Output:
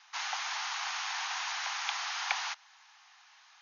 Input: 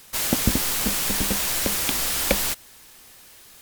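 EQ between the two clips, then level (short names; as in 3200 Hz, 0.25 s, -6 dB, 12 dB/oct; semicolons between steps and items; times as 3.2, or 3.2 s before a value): steep high-pass 760 Hz 72 dB/oct; brick-wall FIR low-pass 6800 Hz; high shelf 2600 Hz -12 dB; 0.0 dB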